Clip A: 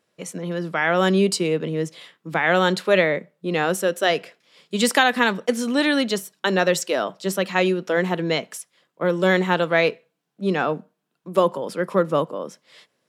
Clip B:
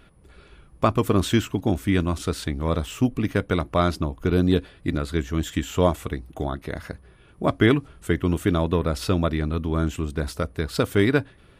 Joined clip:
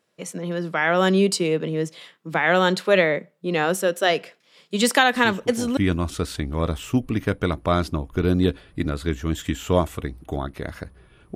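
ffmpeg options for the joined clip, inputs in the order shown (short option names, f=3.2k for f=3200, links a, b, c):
-filter_complex "[1:a]asplit=2[a][b];[0:a]apad=whole_dur=11.35,atrim=end=11.35,atrim=end=5.772[c];[b]atrim=start=1.848:end=7.43[d];[a]atrim=start=1.23:end=1.85,asetpts=PTS-STARTPTS,volume=-13dB,afade=t=in:d=0.004:c=hsin,afade=t=out:st=0.616:d=0.004:c=hsin,adelay=5150[e];[c][d]acrossfade=d=0.004:c1=hsin:c2=hsin[f];[f][e]amix=inputs=2:normalize=0"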